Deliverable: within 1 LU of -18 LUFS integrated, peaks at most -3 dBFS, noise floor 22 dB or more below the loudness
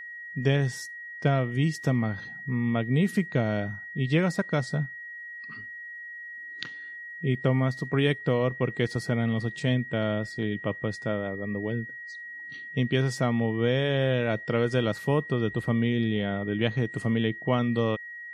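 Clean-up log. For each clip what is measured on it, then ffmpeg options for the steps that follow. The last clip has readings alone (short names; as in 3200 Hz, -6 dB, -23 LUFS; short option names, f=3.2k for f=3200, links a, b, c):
steady tone 1900 Hz; tone level -38 dBFS; loudness -27.5 LUFS; peak -10.0 dBFS; loudness target -18.0 LUFS
-> -af "bandreject=f=1.9k:w=30"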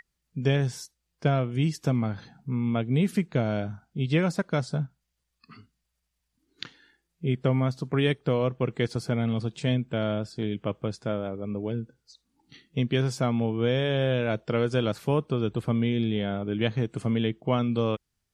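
steady tone none; loudness -27.5 LUFS; peak -10.5 dBFS; loudness target -18.0 LUFS
-> -af "volume=9.5dB,alimiter=limit=-3dB:level=0:latency=1"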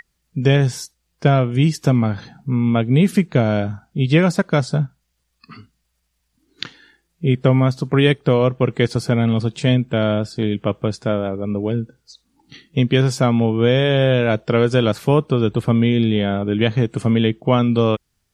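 loudness -18.0 LUFS; peak -3.0 dBFS; noise floor -71 dBFS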